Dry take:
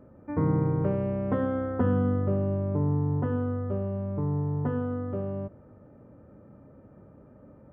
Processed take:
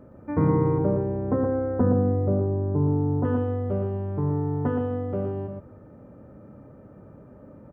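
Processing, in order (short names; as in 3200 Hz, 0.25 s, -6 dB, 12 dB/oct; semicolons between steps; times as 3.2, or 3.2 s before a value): 0.78–3.25 LPF 1000 Hz 12 dB/oct; echo 0.12 s -6 dB; gain +4 dB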